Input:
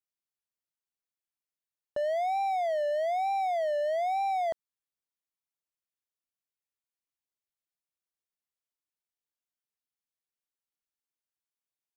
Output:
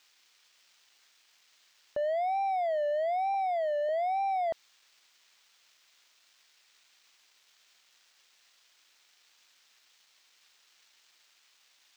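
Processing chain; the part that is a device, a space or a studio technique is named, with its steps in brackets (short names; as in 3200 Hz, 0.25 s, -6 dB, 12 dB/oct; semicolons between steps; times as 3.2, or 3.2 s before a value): budget class-D amplifier (switching dead time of 0.059 ms; switching spikes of -33.5 dBFS); 3.34–3.89 HPF 360 Hz 12 dB/oct; air absorption 180 m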